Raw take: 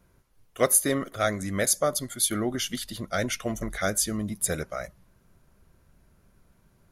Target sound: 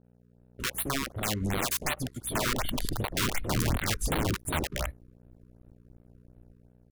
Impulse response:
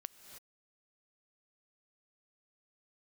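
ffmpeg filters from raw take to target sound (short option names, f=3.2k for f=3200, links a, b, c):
-filter_complex "[0:a]afwtdn=0.0355,asubboost=boost=9:cutoff=68,acompressor=threshold=-27dB:ratio=16,aeval=exprs='(mod(25.1*val(0)+1,2)-1)/25.1':c=same,acrossover=split=520[a][b];[b]adelay=40[c];[a][c]amix=inputs=2:normalize=0,aeval=exprs='val(0)+0.00251*(sin(2*PI*60*n/s)+sin(2*PI*2*60*n/s)/2+sin(2*PI*3*60*n/s)/3+sin(2*PI*4*60*n/s)/4+sin(2*PI*5*60*n/s)/5)':c=same,aeval=exprs='sgn(val(0))*max(abs(val(0))-0.00211,0)':c=same,dynaudnorm=f=160:g=7:m=4.5dB,afftfilt=real='re*(1-between(b*sr/1024,650*pow(6500/650,0.5+0.5*sin(2*PI*2.7*pts/sr))/1.41,650*pow(6500/650,0.5+0.5*sin(2*PI*2.7*pts/sr))*1.41))':imag='im*(1-between(b*sr/1024,650*pow(6500/650,0.5+0.5*sin(2*PI*2.7*pts/sr))/1.41,650*pow(6500/650,0.5+0.5*sin(2*PI*2.7*pts/sr))*1.41))':win_size=1024:overlap=0.75,volume=2dB"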